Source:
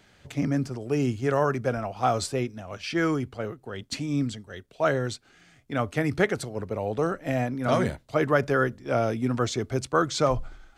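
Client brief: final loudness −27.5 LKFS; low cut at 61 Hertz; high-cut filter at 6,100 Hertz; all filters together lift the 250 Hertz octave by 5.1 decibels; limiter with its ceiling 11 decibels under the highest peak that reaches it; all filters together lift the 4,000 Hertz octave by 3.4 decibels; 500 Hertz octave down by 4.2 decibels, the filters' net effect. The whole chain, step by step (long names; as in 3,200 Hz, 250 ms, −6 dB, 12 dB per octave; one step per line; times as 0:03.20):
high-pass filter 61 Hz
low-pass filter 6,100 Hz
parametric band 250 Hz +8.5 dB
parametric band 500 Hz −8 dB
parametric band 4,000 Hz +5 dB
level +2 dB
brickwall limiter −17 dBFS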